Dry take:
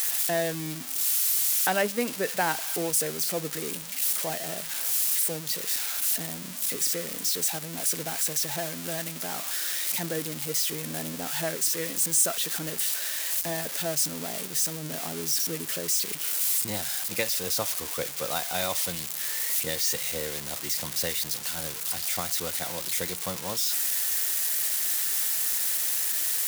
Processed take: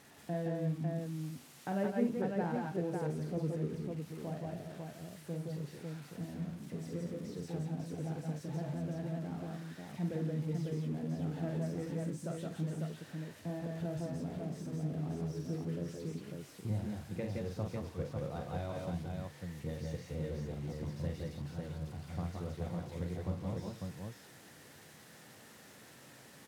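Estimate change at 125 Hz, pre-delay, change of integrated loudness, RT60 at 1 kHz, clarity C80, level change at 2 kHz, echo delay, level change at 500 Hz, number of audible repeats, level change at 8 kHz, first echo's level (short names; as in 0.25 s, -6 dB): +4.5 dB, none, -13.5 dB, none, none, -18.0 dB, 46 ms, -7.0 dB, 4, -32.0 dB, -5.5 dB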